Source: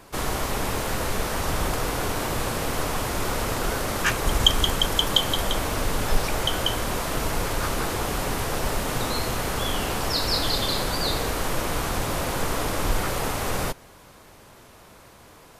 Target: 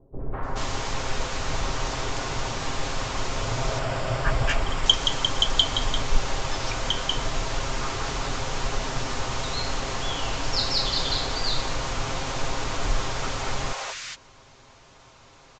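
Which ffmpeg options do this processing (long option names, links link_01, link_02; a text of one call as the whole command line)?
ffmpeg -i in.wav -filter_complex "[0:a]asettb=1/sr,asplit=3[link_01][link_02][link_03];[link_01]atrim=end=3.364[link_04];[link_02]atrim=start=3.36:end=4.43,asetpts=PTS-STARTPTS,afade=type=in:duration=0.004:curve=qsin,afade=type=out:start_time=1.066:duration=0.004:curve=qsin,equalizer=frequency=125:width_type=o:width=0.33:gain=11,equalizer=frequency=630:width_type=o:width=0.33:gain=9,equalizer=frequency=4000:width_type=o:width=0.33:gain=-6,equalizer=frequency=6300:width_type=o:width=0.33:gain=-10[link_05];[link_03]atrim=start=4.426[link_06];[link_04][link_05]acrossfade=duration=0.004:curve1=hsin:curve2=qsin[link_07];[link_07][link_06]acrossfade=duration=0.004:curve1=qsin:curve2=hsin,aresample=16000,aresample=44100,equalizer=frequency=220:width=0.6:gain=-6,aecho=1:1:7.5:0.4,acrossover=split=520|1600[link_08][link_09][link_10];[link_09]adelay=200[link_11];[link_10]adelay=430[link_12];[link_08][link_11][link_12]amix=inputs=3:normalize=0" out.wav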